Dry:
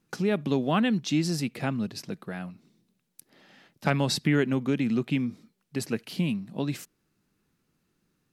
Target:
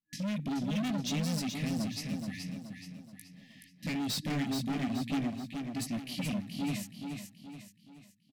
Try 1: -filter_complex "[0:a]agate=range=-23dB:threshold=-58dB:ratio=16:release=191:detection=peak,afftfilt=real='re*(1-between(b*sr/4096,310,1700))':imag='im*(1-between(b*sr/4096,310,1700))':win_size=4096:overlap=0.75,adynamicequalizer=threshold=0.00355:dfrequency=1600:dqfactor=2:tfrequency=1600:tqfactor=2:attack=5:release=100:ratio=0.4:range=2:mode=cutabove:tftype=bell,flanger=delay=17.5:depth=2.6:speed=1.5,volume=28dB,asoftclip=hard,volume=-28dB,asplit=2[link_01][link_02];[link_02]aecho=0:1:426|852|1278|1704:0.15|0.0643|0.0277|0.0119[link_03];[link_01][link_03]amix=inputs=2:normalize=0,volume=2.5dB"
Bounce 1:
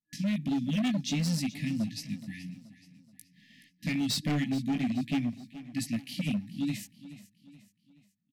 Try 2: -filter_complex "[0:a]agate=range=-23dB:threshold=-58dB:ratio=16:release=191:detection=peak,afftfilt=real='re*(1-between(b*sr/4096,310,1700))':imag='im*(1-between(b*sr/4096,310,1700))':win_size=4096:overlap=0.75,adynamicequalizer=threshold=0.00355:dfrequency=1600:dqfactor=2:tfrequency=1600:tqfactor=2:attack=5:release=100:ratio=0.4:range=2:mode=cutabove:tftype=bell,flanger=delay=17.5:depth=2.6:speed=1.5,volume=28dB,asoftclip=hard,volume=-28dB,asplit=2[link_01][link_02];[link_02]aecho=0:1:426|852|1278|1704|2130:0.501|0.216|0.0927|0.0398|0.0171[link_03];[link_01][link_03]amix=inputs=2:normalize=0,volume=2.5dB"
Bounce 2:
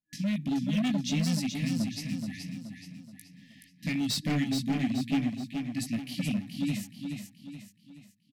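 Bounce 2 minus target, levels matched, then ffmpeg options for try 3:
gain into a clipping stage and back: distortion −5 dB
-filter_complex "[0:a]agate=range=-23dB:threshold=-58dB:ratio=16:release=191:detection=peak,afftfilt=real='re*(1-between(b*sr/4096,310,1700))':imag='im*(1-between(b*sr/4096,310,1700))':win_size=4096:overlap=0.75,adynamicequalizer=threshold=0.00355:dfrequency=1600:dqfactor=2:tfrequency=1600:tqfactor=2:attack=5:release=100:ratio=0.4:range=2:mode=cutabove:tftype=bell,flanger=delay=17.5:depth=2.6:speed=1.5,volume=34dB,asoftclip=hard,volume=-34dB,asplit=2[link_01][link_02];[link_02]aecho=0:1:426|852|1278|1704|2130:0.501|0.216|0.0927|0.0398|0.0171[link_03];[link_01][link_03]amix=inputs=2:normalize=0,volume=2.5dB"

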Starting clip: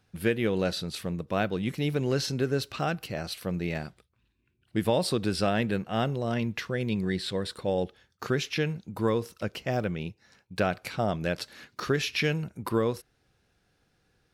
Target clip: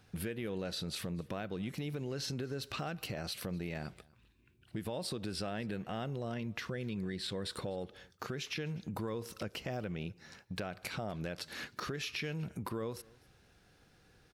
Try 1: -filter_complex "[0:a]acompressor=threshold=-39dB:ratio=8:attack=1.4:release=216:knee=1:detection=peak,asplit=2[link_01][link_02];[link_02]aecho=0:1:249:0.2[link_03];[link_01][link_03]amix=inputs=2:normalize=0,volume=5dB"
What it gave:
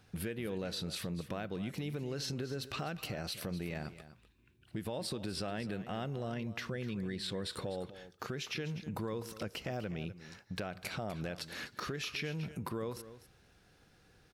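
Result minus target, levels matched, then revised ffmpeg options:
echo-to-direct +11 dB
-filter_complex "[0:a]acompressor=threshold=-39dB:ratio=8:attack=1.4:release=216:knee=1:detection=peak,asplit=2[link_01][link_02];[link_02]aecho=0:1:249:0.0562[link_03];[link_01][link_03]amix=inputs=2:normalize=0,volume=5dB"

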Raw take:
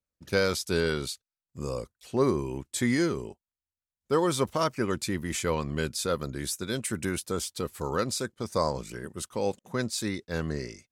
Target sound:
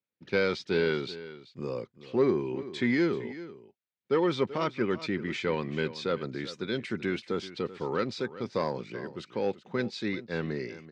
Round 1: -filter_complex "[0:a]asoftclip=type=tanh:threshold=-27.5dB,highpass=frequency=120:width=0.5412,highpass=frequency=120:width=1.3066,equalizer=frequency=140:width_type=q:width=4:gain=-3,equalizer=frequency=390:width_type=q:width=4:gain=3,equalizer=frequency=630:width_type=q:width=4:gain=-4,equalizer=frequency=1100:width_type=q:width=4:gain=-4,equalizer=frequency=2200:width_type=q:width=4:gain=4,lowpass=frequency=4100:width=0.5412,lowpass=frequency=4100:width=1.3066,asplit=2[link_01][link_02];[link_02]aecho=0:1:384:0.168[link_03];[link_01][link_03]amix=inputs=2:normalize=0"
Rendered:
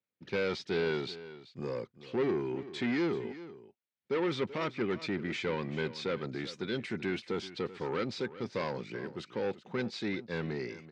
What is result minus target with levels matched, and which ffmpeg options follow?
soft clipping: distortion +13 dB
-filter_complex "[0:a]asoftclip=type=tanh:threshold=-16dB,highpass=frequency=120:width=0.5412,highpass=frequency=120:width=1.3066,equalizer=frequency=140:width_type=q:width=4:gain=-3,equalizer=frequency=390:width_type=q:width=4:gain=3,equalizer=frequency=630:width_type=q:width=4:gain=-4,equalizer=frequency=1100:width_type=q:width=4:gain=-4,equalizer=frequency=2200:width_type=q:width=4:gain=4,lowpass=frequency=4100:width=0.5412,lowpass=frequency=4100:width=1.3066,asplit=2[link_01][link_02];[link_02]aecho=0:1:384:0.168[link_03];[link_01][link_03]amix=inputs=2:normalize=0"

